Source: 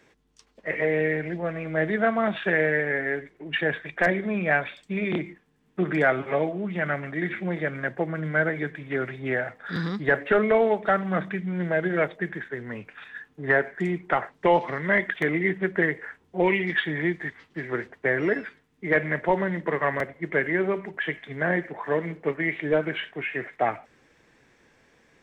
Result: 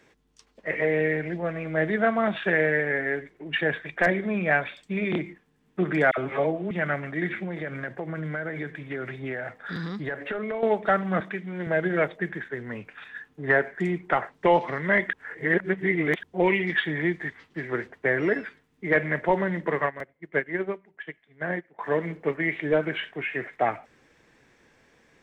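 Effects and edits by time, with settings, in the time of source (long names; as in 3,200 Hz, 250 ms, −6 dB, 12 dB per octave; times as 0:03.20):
0:06.11–0:06.71: all-pass dispersion lows, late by 64 ms, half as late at 1,200 Hz
0:07.44–0:10.63: downward compressor 5 to 1, threshold −28 dBFS
0:11.20–0:11.67: high-pass filter 250 Hz
0:15.13–0:16.23: reverse
0:19.86–0:21.79: expander for the loud parts 2.5 to 1, over −34 dBFS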